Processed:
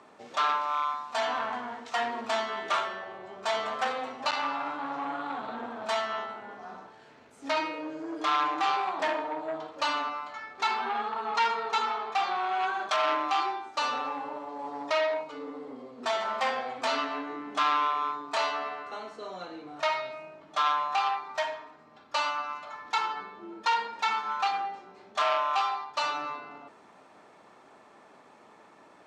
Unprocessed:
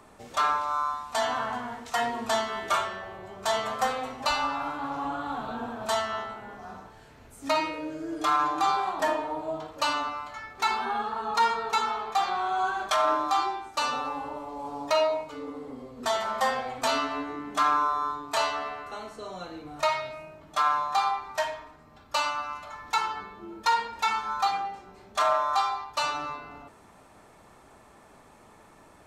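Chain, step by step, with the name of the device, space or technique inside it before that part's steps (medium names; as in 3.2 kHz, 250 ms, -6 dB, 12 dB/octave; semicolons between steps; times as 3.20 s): public-address speaker with an overloaded transformer (transformer saturation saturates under 2 kHz; band-pass 230–5300 Hz)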